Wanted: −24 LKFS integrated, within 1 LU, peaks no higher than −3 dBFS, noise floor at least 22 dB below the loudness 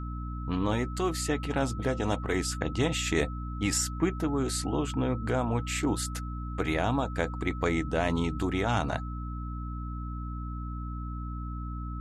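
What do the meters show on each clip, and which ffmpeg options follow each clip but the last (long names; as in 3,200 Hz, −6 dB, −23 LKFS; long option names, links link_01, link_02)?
mains hum 60 Hz; hum harmonics up to 300 Hz; level of the hum −33 dBFS; interfering tone 1,300 Hz; level of the tone −43 dBFS; integrated loudness −31.0 LKFS; sample peak −12.5 dBFS; target loudness −24.0 LKFS
→ -af "bandreject=frequency=60:width_type=h:width=6,bandreject=frequency=120:width_type=h:width=6,bandreject=frequency=180:width_type=h:width=6,bandreject=frequency=240:width_type=h:width=6,bandreject=frequency=300:width_type=h:width=6"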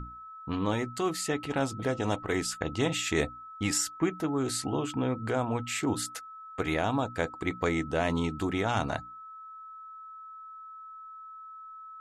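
mains hum none found; interfering tone 1,300 Hz; level of the tone −43 dBFS
→ -af "bandreject=frequency=1300:width=30"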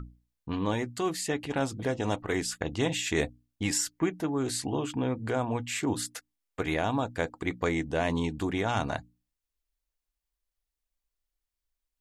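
interfering tone none found; integrated loudness −31.0 LKFS; sample peak −14.0 dBFS; target loudness −24.0 LKFS
→ -af "volume=7dB"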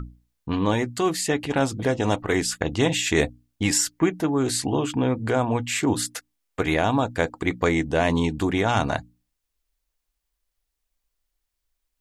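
integrated loudness −24.0 LKFS; sample peak −7.0 dBFS; background noise floor −80 dBFS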